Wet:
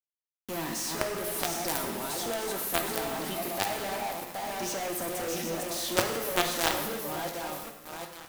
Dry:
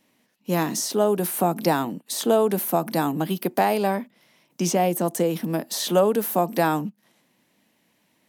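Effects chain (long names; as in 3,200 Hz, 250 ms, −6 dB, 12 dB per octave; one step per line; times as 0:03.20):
feedback delay that plays each chunk backwards 385 ms, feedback 49%, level −5.5 dB
high-pass filter 590 Hz 6 dB per octave
log-companded quantiser 2 bits
reverb whose tail is shaped and stops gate 370 ms falling, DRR 3 dB
level −9 dB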